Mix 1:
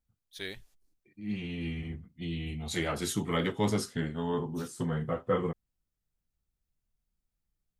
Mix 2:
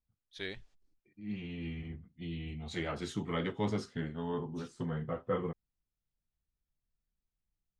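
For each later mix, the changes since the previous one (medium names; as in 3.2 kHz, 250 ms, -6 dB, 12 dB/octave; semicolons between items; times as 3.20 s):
second voice -4.5 dB; master: add distance through air 110 m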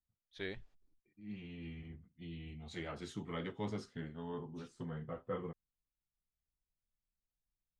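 first voice: add treble shelf 3.2 kHz -11 dB; second voice -7.0 dB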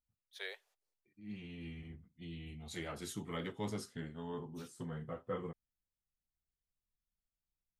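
first voice: add steep high-pass 450 Hz 48 dB/octave; master: remove distance through air 110 m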